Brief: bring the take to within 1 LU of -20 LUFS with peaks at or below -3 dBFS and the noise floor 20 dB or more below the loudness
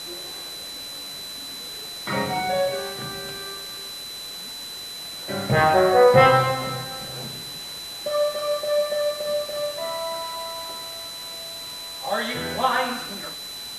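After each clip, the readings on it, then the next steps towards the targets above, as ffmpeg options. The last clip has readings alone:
steady tone 4 kHz; tone level -34 dBFS; noise floor -36 dBFS; noise floor target -45 dBFS; loudness -24.5 LUFS; peak level -3.0 dBFS; loudness target -20.0 LUFS
-> -af "bandreject=f=4000:w=30"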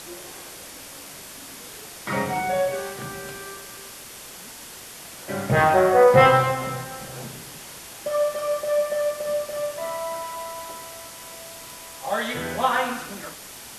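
steady tone not found; noise floor -41 dBFS; noise floor target -43 dBFS
-> -af "afftdn=nr=6:nf=-41"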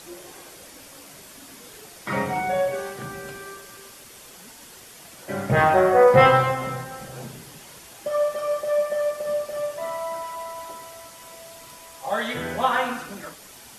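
noise floor -46 dBFS; loudness -22.5 LUFS; peak level -3.5 dBFS; loudness target -20.0 LUFS
-> -af "volume=1.33,alimiter=limit=0.708:level=0:latency=1"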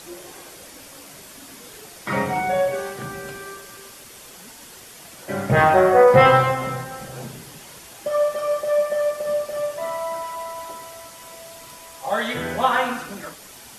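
loudness -20.5 LUFS; peak level -3.0 dBFS; noise floor -43 dBFS

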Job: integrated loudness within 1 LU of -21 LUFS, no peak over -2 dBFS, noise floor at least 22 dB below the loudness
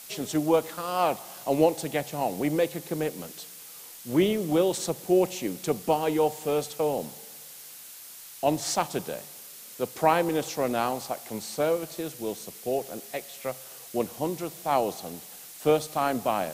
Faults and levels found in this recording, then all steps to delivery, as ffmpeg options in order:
noise floor -45 dBFS; noise floor target -50 dBFS; loudness -28.0 LUFS; peak level -7.5 dBFS; loudness target -21.0 LUFS
-> -af "afftdn=nr=6:nf=-45"
-af "volume=2.24,alimiter=limit=0.794:level=0:latency=1"

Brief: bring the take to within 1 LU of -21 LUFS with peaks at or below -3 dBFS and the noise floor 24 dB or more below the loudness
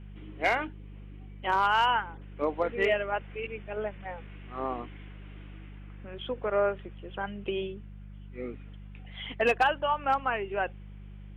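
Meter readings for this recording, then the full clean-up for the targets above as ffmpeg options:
hum 50 Hz; highest harmonic 200 Hz; hum level -42 dBFS; loudness -30.0 LUFS; peak level -15.5 dBFS; loudness target -21.0 LUFS
-> -af "bandreject=f=50:t=h:w=4,bandreject=f=100:t=h:w=4,bandreject=f=150:t=h:w=4,bandreject=f=200:t=h:w=4"
-af "volume=2.82"

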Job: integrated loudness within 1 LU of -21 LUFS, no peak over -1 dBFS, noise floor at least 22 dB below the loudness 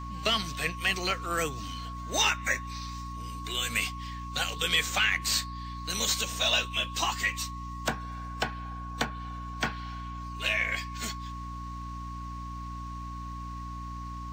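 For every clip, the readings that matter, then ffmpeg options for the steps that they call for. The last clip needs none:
hum 60 Hz; highest harmonic 300 Hz; hum level -37 dBFS; steady tone 1.1 kHz; tone level -40 dBFS; loudness -30.5 LUFS; peak level -14.5 dBFS; loudness target -21.0 LUFS
-> -af "bandreject=f=60:t=h:w=4,bandreject=f=120:t=h:w=4,bandreject=f=180:t=h:w=4,bandreject=f=240:t=h:w=4,bandreject=f=300:t=h:w=4"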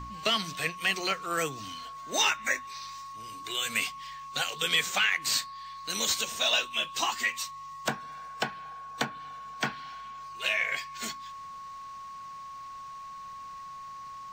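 hum not found; steady tone 1.1 kHz; tone level -40 dBFS
-> -af "bandreject=f=1100:w=30"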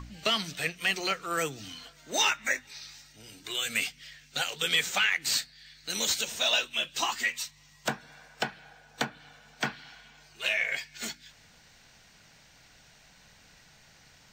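steady tone not found; loudness -29.5 LUFS; peak level -15.0 dBFS; loudness target -21.0 LUFS
-> -af "volume=2.66"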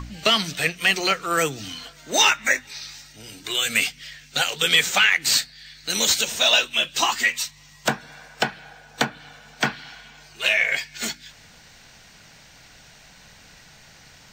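loudness -21.0 LUFS; peak level -6.5 dBFS; noise floor -50 dBFS

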